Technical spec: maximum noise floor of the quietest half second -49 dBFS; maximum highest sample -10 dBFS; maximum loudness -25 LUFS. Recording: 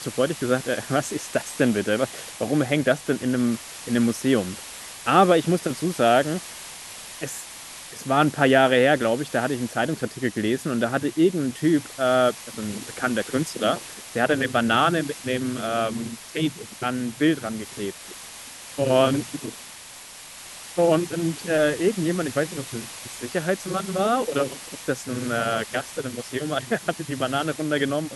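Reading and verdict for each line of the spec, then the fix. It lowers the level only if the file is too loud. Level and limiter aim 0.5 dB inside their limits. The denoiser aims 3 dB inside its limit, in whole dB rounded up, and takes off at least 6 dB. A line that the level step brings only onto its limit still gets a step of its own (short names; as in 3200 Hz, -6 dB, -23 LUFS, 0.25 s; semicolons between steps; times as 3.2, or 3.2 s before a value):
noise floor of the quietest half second -42 dBFS: fail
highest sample -3.5 dBFS: fail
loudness -24.0 LUFS: fail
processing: denoiser 9 dB, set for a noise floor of -42 dBFS; gain -1.5 dB; limiter -10.5 dBFS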